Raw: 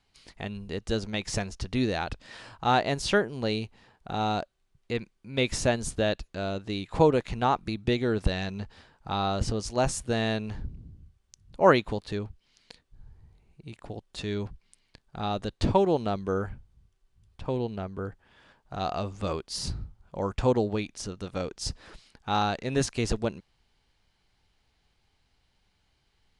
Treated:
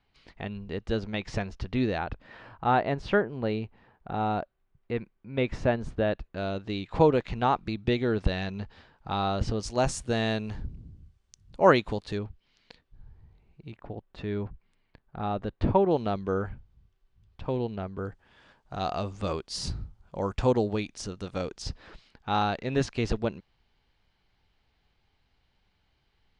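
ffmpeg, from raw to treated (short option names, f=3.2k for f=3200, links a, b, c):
-af "asetnsamples=n=441:p=0,asendcmd='1.98 lowpass f 2000;6.37 lowpass f 4300;9.63 lowpass f 8200;12.18 lowpass f 3800;13.72 lowpass f 2000;15.91 lowpass f 4200;17.97 lowpass f 8300;21.62 lowpass f 4100',lowpass=3.1k"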